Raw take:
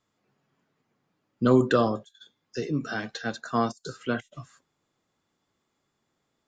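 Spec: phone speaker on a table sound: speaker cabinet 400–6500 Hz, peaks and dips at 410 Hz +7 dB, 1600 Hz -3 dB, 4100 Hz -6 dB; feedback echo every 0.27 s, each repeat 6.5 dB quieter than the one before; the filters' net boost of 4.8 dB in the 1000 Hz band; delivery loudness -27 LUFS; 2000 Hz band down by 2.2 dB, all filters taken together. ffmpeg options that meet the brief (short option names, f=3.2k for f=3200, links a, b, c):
-af "highpass=f=400:w=0.5412,highpass=f=400:w=1.3066,equalizer=f=410:t=q:w=4:g=7,equalizer=f=1.6k:t=q:w=4:g=-3,equalizer=f=4.1k:t=q:w=4:g=-6,lowpass=f=6.5k:w=0.5412,lowpass=f=6.5k:w=1.3066,equalizer=f=1k:t=o:g=7.5,equalizer=f=2k:t=o:g=-4,aecho=1:1:270|540|810|1080|1350|1620:0.473|0.222|0.105|0.0491|0.0231|0.0109,volume=-1dB"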